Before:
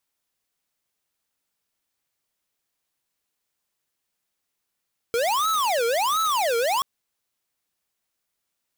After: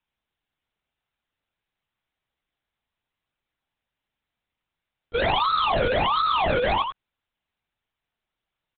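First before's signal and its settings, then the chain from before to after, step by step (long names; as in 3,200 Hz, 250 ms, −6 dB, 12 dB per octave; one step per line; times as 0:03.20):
siren wail 460–1,310 Hz 1.4 per second square −22.5 dBFS 1.68 s
on a send: single-tap delay 88 ms −6 dB
on the sum: linear-prediction vocoder at 8 kHz whisper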